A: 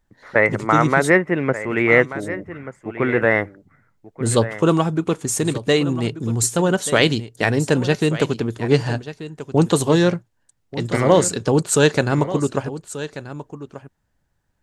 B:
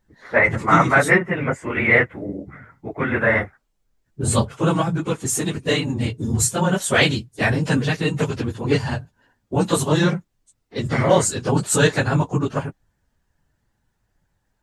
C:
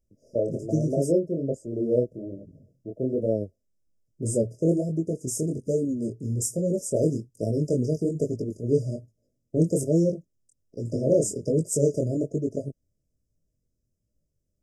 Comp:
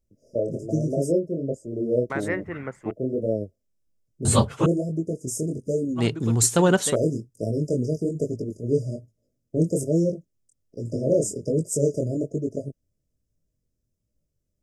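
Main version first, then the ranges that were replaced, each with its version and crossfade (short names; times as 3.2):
C
2.1–2.91 from A
4.25–4.66 from B
5.98–6.93 from A, crossfade 0.06 s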